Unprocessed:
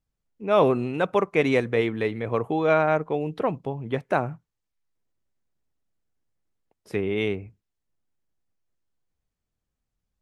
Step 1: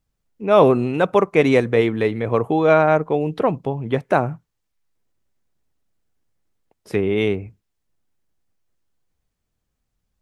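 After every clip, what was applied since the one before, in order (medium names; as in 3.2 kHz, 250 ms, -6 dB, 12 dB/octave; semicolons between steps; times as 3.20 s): dynamic bell 2.4 kHz, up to -3 dB, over -38 dBFS, Q 0.75; trim +6.5 dB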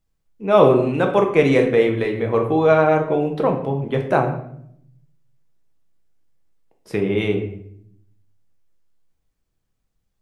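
reverberation RT60 0.70 s, pre-delay 6 ms, DRR 2.5 dB; trim -2 dB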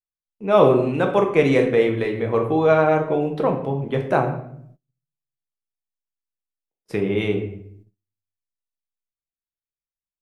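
gate -46 dBFS, range -30 dB; trim -1.5 dB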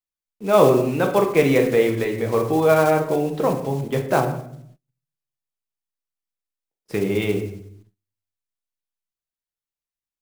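block-companded coder 5-bit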